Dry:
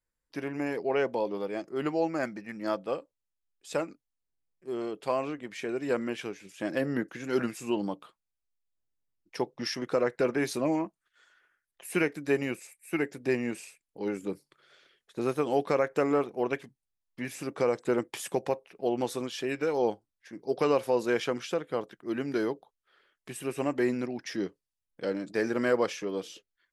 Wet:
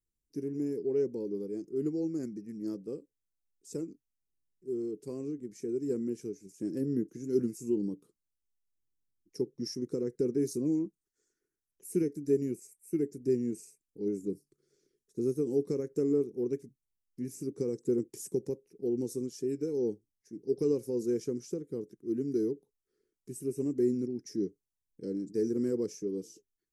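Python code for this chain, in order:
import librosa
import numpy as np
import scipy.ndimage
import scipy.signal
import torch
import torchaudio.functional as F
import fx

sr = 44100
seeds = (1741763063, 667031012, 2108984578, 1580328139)

y = fx.curve_eq(x, sr, hz=(430.0, 620.0, 1500.0, 2200.0, 3300.0, 5700.0), db=(0, -28, -28, -25, -30, -3))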